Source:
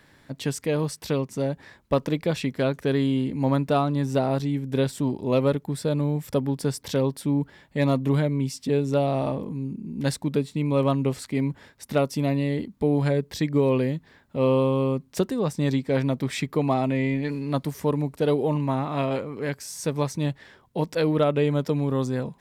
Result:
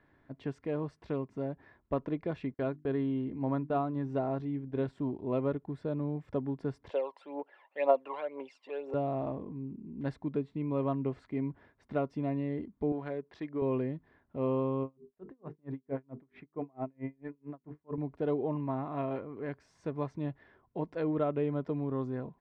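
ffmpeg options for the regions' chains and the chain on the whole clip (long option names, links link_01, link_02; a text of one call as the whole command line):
ffmpeg -i in.wav -filter_complex "[0:a]asettb=1/sr,asplit=3[link_01][link_02][link_03];[link_01]atrim=end=2.544[link_04];[link_02]atrim=start=2.54:end=4.89,asetpts=PTS-STARTPTS,afade=type=in:duration=0.004:curve=qsin,afade=type=out:start_time=2.346:duration=0.004:curve=qsin,agate=range=-34dB:threshold=-35dB:ratio=16:release=100:detection=peak,bandreject=frequency=50:width_type=h:width=6,bandreject=frequency=100:width_type=h:width=6,bandreject=frequency=150:width_type=h:width=6,bandreject=frequency=200:width_type=h:width=6,bandreject=frequency=250:width_type=h:width=6,bandreject=frequency=300:width_type=h:width=6,bandreject=frequency=350:width_type=h:width=6[link_05];[link_03]atrim=start=4.886[link_06];[link_04][link_05]acrossfade=duration=0.004:curve1=hsin:curve2=qsin[link_07];[link_07][link_06]acrossfade=duration=0.004:curve1=qsin:curve2=hsin,asettb=1/sr,asplit=3[link_08][link_09][link_10];[link_08]atrim=end=6.904[link_11];[link_09]atrim=start=6.9:end=8.94,asetpts=PTS-STARTPTS,afade=type=in:duration=0.004:curve=qsin,afade=type=out:start_time=2.036:duration=0.004:curve=qsin,aphaser=in_gain=1:out_gain=1:delay=1.1:decay=0.68:speed=2:type=triangular,highpass=frequency=490:width=0.5412,highpass=frequency=490:width=1.3066,equalizer=frequency=540:width_type=q:width=4:gain=9,equalizer=frequency=820:width_type=q:width=4:gain=8,equalizer=frequency=2700:width_type=q:width=4:gain=8,equalizer=frequency=6000:width_type=q:width=4:gain=-5,lowpass=frequency=8800:width=0.5412,lowpass=frequency=8800:width=1.3066[link_12];[link_10]atrim=start=8.936[link_13];[link_11][link_12]acrossfade=duration=0.004:curve1=hsin:curve2=qsin[link_14];[link_14][link_13]acrossfade=duration=0.004:curve1=qsin:curve2=hsin,asettb=1/sr,asplit=3[link_15][link_16][link_17];[link_15]atrim=end=12.924[link_18];[link_16]atrim=start=12.92:end=13.62,asetpts=PTS-STARTPTS,afade=type=in:duration=0.004:curve=qsin,afade=type=out:start_time=0.696:duration=0.004:curve=qsin,highpass=frequency=480:poles=1,highshelf=frequency=5600:gain=5.5,adynamicsmooth=sensitivity=7:basefreq=2600[link_19];[link_17]atrim=start=13.616[link_20];[link_18][link_19]acrossfade=duration=0.004:curve1=hsin:curve2=qsin[link_21];[link_21][link_20]acrossfade=duration=0.004:curve1=qsin:curve2=hsin,asettb=1/sr,asplit=3[link_22][link_23][link_24];[link_22]atrim=end=14.834[link_25];[link_23]atrim=start=14.83:end=17.98,asetpts=PTS-STARTPTS,afade=type=in:duration=0.004:curve=qsin,afade=type=out:start_time=3.146:duration=0.004:curve=qsin,lowpass=2000,bandreject=frequency=50:width_type=h:width=6,bandreject=frequency=100:width_type=h:width=6,bandreject=frequency=150:width_type=h:width=6,bandreject=frequency=200:width_type=h:width=6,bandreject=frequency=250:width_type=h:width=6,bandreject=frequency=300:width_type=h:width=6,bandreject=frequency=350:width_type=h:width=6,bandreject=frequency=400:width_type=h:width=6,bandreject=frequency=450:width_type=h:width=6,aeval=exprs='val(0)*pow(10,-38*(0.5-0.5*cos(2*PI*4.5*n/s))/20)':channel_layout=same[link_26];[link_24]atrim=start=17.976[link_27];[link_25][link_26]acrossfade=duration=0.004:curve1=hsin:curve2=qsin[link_28];[link_28][link_27]acrossfade=duration=0.004:curve1=qsin:curve2=hsin,lowpass=1600,aecho=1:1:2.9:0.3,volume=-9dB" out.wav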